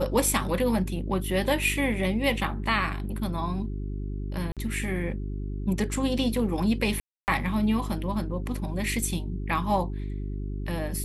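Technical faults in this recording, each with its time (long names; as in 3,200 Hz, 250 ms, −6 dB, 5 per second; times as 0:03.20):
mains hum 50 Hz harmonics 8 −32 dBFS
0:04.52–0:04.57: drop-out 47 ms
0:07.00–0:07.28: drop-out 279 ms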